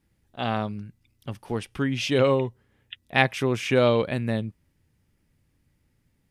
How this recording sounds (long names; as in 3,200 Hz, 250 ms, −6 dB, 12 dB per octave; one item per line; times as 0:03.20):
background noise floor −70 dBFS
spectral slope −4.5 dB per octave